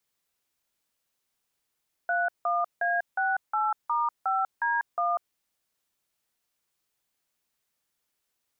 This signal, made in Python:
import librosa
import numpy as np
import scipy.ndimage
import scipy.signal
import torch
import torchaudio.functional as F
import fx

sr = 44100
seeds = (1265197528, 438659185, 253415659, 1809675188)

y = fx.dtmf(sr, digits='31A68*5D1', tone_ms=194, gap_ms=167, level_db=-26.0)